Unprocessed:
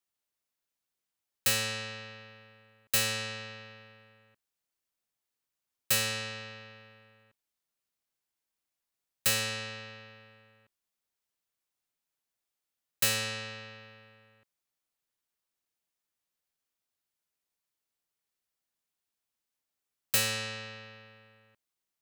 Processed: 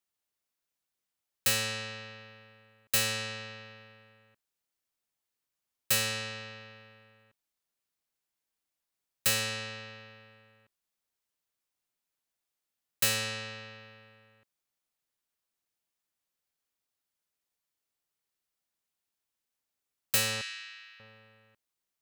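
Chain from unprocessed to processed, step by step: 20.41–21 HPF 1500 Hz 24 dB/oct

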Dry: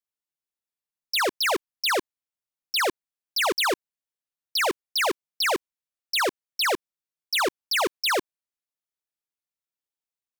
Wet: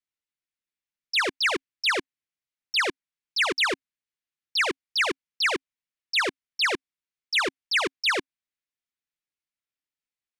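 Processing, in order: EQ curve 270 Hz 0 dB, 750 Hz -8 dB, 2100 Hz +4 dB, 10000 Hz -7 dB, 15000 Hz -27 dB

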